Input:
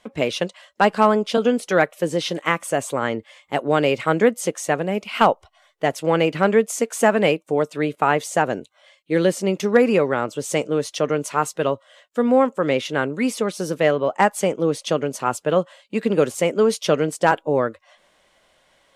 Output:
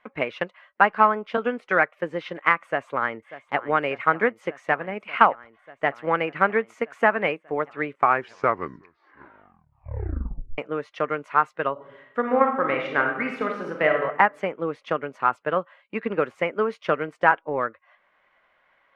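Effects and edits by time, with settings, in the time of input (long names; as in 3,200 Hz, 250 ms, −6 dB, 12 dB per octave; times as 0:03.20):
0:02.63–0:03.58: delay throw 590 ms, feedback 85%, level −14 dB
0:07.81: tape stop 2.77 s
0:11.72–0:14.01: thrown reverb, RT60 0.93 s, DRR 0.5 dB
whole clip: drawn EQ curve 110 Hz 0 dB, 610 Hz +5 dB, 1,200 Hz +14 dB, 2,200 Hz +12 dB, 3,300 Hz −1 dB, 8,400 Hz −20 dB; transient designer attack +4 dB, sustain −2 dB; level −13 dB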